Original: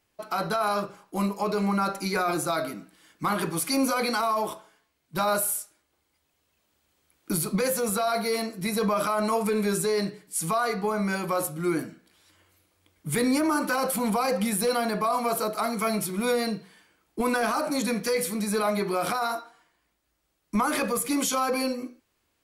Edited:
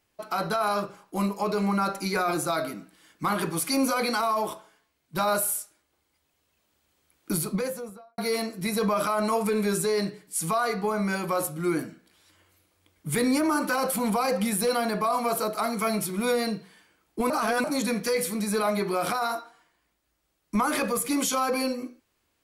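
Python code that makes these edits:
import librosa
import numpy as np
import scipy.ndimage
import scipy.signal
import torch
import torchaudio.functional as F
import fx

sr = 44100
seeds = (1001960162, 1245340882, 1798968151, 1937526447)

y = fx.studio_fade_out(x, sr, start_s=7.31, length_s=0.87)
y = fx.edit(y, sr, fx.reverse_span(start_s=17.3, length_s=0.34), tone=tone)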